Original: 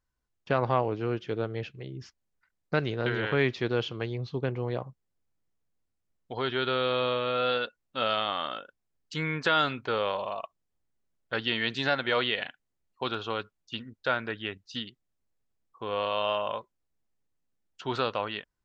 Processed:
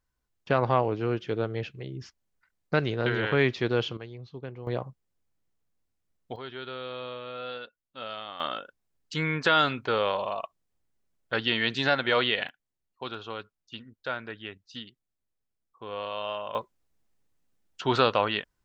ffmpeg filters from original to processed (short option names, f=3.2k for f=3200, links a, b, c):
-af "asetnsamples=n=441:p=0,asendcmd='3.97 volume volume -9dB;4.67 volume volume 1.5dB;6.36 volume volume -10dB;8.4 volume volume 2.5dB;12.49 volume volume -5dB;16.55 volume volume 6.5dB',volume=2dB"